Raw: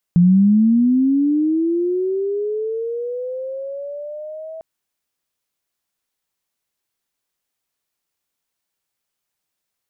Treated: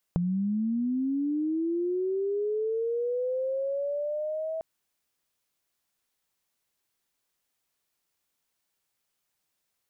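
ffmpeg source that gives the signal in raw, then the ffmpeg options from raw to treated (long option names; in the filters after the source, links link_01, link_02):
-f lavfi -i "aevalsrc='pow(10,(-8-21.5*t/4.45)/20)*sin(2*PI*(170*t+480*t*t/(2*4.45)))':duration=4.45:sample_rate=44100"
-af "acompressor=threshold=-27dB:ratio=10"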